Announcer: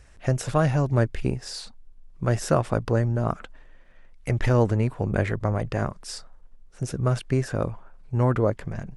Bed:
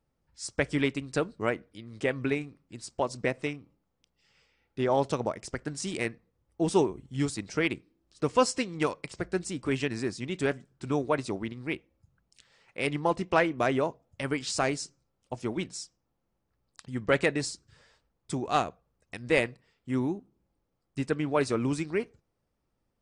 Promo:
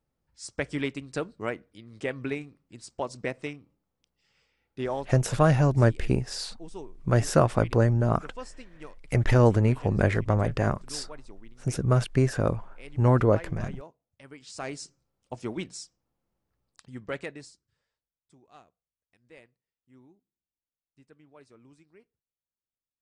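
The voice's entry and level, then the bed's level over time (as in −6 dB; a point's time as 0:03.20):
4.85 s, +1.0 dB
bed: 0:04.86 −3 dB
0:05.25 −17.5 dB
0:14.31 −17.5 dB
0:14.90 −1.5 dB
0:16.61 −1.5 dB
0:18.26 −27.5 dB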